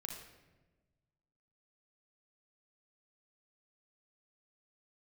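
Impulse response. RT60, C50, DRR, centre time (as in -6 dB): 1.2 s, 3.5 dB, 0.5 dB, 43 ms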